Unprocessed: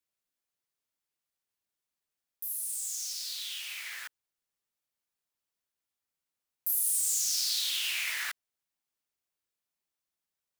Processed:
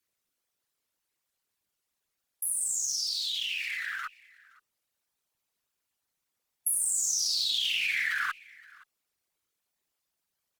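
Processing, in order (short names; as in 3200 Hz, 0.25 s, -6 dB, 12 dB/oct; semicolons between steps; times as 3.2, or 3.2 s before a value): formant sharpening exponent 2; compressor, threshold -31 dBFS, peak gain reduction 6.5 dB; added harmonics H 8 -44 dB, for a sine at -17 dBFS; formant shift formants -3 st; on a send: echo 0.52 s -23.5 dB; on the sum: gain +6 dB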